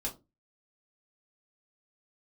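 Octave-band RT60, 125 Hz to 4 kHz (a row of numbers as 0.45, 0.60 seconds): 0.35, 0.35, 0.30, 0.20, 0.15, 0.15 seconds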